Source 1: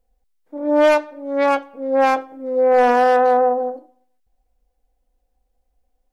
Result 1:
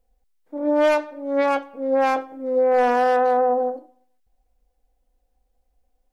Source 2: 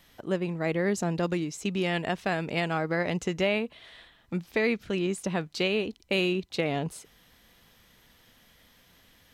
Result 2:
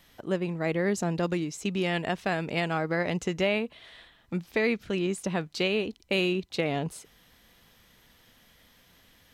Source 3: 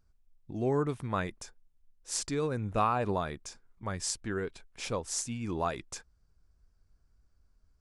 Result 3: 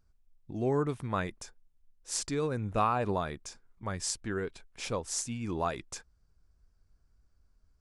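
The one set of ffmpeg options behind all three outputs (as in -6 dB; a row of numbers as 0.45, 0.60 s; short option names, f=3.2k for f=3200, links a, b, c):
-af "alimiter=limit=-12dB:level=0:latency=1:release=17"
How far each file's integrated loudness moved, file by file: -3.5, 0.0, 0.0 LU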